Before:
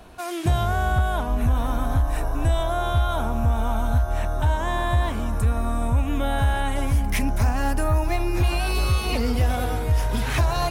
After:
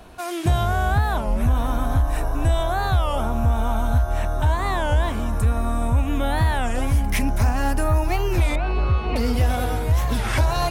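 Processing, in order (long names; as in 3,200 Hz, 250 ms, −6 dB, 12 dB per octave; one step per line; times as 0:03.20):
0:08.56–0:09.16: low-pass filter 1,800 Hz 12 dB per octave
wow of a warped record 33 1/3 rpm, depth 250 cents
level +1.5 dB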